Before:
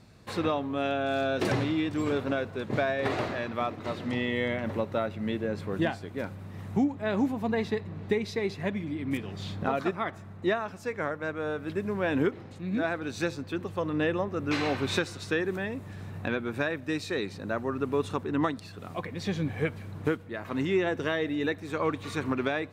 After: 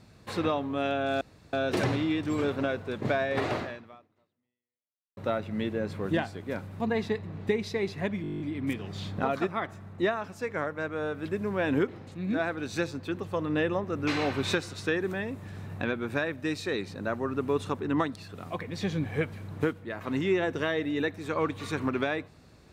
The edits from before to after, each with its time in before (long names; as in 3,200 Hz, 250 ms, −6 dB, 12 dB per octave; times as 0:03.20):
0:01.21: splice in room tone 0.32 s
0:03.29–0:04.85: fade out exponential
0:06.48–0:07.42: remove
0:08.84: stutter 0.02 s, 10 plays